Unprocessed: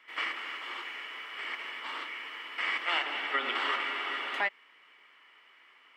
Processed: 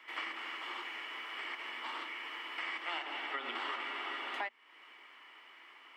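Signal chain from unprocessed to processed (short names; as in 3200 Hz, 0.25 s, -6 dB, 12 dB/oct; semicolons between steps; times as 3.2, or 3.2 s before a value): bell 1300 Hz -4 dB 1.5 oct; compressor 2.5:1, threshold -47 dBFS, peak gain reduction 13.5 dB; rippled Chebyshev high-pass 230 Hz, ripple 6 dB; gain +9 dB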